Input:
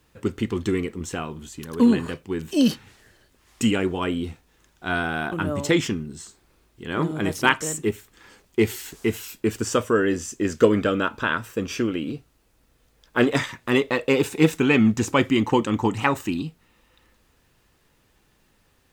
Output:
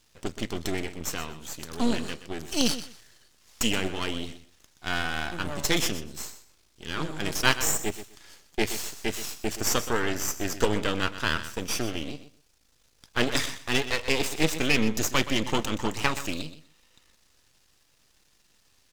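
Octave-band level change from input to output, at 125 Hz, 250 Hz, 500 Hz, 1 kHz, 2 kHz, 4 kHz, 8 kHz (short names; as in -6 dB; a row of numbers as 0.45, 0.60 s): -6.5, -9.0, -8.0, -5.0, -3.0, +3.0, +3.5 dB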